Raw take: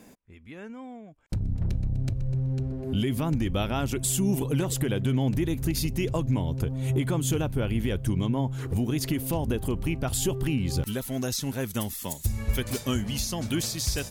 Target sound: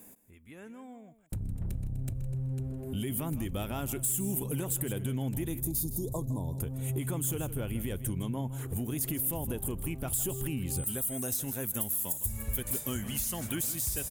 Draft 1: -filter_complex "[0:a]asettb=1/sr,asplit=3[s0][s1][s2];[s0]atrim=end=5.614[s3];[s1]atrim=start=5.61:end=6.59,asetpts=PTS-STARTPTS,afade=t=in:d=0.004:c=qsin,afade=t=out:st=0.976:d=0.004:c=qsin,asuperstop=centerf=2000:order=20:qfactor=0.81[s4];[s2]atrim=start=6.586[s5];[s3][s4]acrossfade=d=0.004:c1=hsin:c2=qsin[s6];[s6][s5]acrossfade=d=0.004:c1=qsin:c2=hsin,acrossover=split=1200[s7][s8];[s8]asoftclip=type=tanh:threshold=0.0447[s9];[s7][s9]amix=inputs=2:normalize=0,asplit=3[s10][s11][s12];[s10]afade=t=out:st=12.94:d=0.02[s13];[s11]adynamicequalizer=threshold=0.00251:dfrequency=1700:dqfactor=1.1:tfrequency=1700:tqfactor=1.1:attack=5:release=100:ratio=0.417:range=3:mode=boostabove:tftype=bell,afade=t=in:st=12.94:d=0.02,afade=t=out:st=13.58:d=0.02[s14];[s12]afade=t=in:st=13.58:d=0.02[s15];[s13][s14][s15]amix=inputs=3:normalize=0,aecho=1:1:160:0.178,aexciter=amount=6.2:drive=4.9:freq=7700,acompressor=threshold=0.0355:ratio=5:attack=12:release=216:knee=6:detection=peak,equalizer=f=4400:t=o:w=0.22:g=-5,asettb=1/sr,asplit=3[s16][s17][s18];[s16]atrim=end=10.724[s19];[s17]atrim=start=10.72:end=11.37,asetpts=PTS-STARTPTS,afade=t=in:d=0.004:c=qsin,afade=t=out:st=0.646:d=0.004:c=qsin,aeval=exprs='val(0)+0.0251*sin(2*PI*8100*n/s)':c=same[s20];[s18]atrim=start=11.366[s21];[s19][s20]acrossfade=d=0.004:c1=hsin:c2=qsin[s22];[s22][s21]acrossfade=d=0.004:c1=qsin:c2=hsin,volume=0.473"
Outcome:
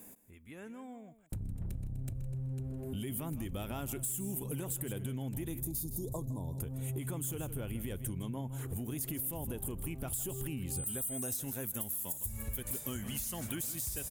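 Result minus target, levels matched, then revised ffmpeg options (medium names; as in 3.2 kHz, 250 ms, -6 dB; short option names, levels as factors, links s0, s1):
compression: peak gain reduction +6.5 dB
-filter_complex "[0:a]asettb=1/sr,asplit=3[s0][s1][s2];[s0]atrim=end=5.614[s3];[s1]atrim=start=5.61:end=6.59,asetpts=PTS-STARTPTS,afade=t=in:d=0.004:c=qsin,afade=t=out:st=0.976:d=0.004:c=qsin,asuperstop=centerf=2000:order=20:qfactor=0.81[s4];[s2]atrim=start=6.586[s5];[s3][s4]acrossfade=d=0.004:c1=hsin:c2=qsin[s6];[s6][s5]acrossfade=d=0.004:c1=qsin:c2=hsin,acrossover=split=1200[s7][s8];[s8]asoftclip=type=tanh:threshold=0.0447[s9];[s7][s9]amix=inputs=2:normalize=0,asplit=3[s10][s11][s12];[s10]afade=t=out:st=12.94:d=0.02[s13];[s11]adynamicequalizer=threshold=0.00251:dfrequency=1700:dqfactor=1.1:tfrequency=1700:tqfactor=1.1:attack=5:release=100:ratio=0.417:range=3:mode=boostabove:tftype=bell,afade=t=in:st=12.94:d=0.02,afade=t=out:st=13.58:d=0.02[s14];[s12]afade=t=in:st=13.58:d=0.02[s15];[s13][s14][s15]amix=inputs=3:normalize=0,aecho=1:1:160:0.178,aexciter=amount=6.2:drive=4.9:freq=7700,acompressor=threshold=0.0944:ratio=5:attack=12:release=216:knee=6:detection=peak,equalizer=f=4400:t=o:w=0.22:g=-5,asettb=1/sr,asplit=3[s16][s17][s18];[s16]atrim=end=10.724[s19];[s17]atrim=start=10.72:end=11.37,asetpts=PTS-STARTPTS,afade=t=in:d=0.004:c=qsin,afade=t=out:st=0.646:d=0.004:c=qsin,aeval=exprs='val(0)+0.0251*sin(2*PI*8100*n/s)':c=same[s20];[s18]atrim=start=11.366[s21];[s19][s20]acrossfade=d=0.004:c1=hsin:c2=qsin[s22];[s22][s21]acrossfade=d=0.004:c1=qsin:c2=hsin,volume=0.473"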